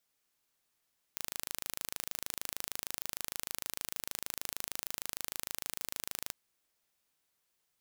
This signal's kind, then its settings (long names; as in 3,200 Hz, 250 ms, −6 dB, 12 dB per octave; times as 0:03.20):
impulse train 26.5 per second, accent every 0, −9.5 dBFS 5.14 s